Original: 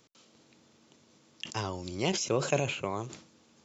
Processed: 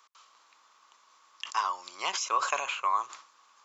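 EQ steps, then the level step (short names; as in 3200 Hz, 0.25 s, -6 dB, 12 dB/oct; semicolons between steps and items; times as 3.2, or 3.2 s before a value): resonant high-pass 1100 Hz, resonance Q 5.8; 0.0 dB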